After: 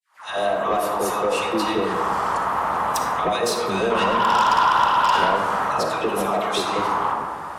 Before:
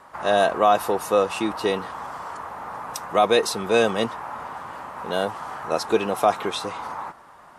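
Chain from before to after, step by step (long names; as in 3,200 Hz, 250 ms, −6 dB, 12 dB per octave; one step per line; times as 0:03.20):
fade in at the beginning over 1.13 s
dynamic equaliser 1,100 Hz, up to +4 dB, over −35 dBFS, Q 2.4
in parallel at −3 dB: brickwall limiter −14.5 dBFS, peak gain reduction 10.5 dB
on the sum: downward compressor 10 to 1, threshold −25 dBFS, peak gain reduction 15.5 dB
all-pass dispersion lows, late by 146 ms, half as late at 840 Hz
0:03.90–0:05.36: hollow resonant body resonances 1,000/1,400/2,700 Hz, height 14 dB, ringing for 20 ms
harmonic generator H 5 −13 dB, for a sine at −12 dBFS
on a send at −3 dB: convolution reverb RT60 1.7 s, pre-delay 15 ms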